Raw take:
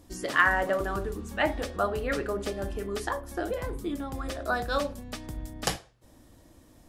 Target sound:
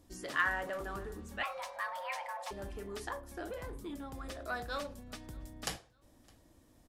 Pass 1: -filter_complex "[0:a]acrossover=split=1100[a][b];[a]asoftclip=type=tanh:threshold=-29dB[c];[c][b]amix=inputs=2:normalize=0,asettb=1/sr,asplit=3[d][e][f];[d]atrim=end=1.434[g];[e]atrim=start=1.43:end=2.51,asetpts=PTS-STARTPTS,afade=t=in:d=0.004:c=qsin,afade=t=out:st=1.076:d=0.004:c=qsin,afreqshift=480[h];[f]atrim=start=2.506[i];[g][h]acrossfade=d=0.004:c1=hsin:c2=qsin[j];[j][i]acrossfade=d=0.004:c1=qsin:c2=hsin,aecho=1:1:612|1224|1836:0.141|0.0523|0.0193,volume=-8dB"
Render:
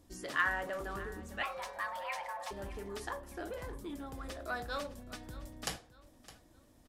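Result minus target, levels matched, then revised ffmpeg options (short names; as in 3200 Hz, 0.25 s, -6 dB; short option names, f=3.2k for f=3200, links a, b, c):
echo-to-direct +10.5 dB
-filter_complex "[0:a]acrossover=split=1100[a][b];[a]asoftclip=type=tanh:threshold=-29dB[c];[c][b]amix=inputs=2:normalize=0,asettb=1/sr,asplit=3[d][e][f];[d]atrim=end=1.434[g];[e]atrim=start=1.43:end=2.51,asetpts=PTS-STARTPTS,afade=t=in:d=0.004:c=qsin,afade=t=out:st=1.076:d=0.004:c=qsin,afreqshift=480[h];[f]atrim=start=2.506[i];[g][h]acrossfade=d=0.004:c1=hsin:c2=qsin[j];[j][i]acrossfade=d=0.004:c1=qsin:c2=hsin,aecho=1:1:612|1224:0.0422|0.0156,volume=-8dB"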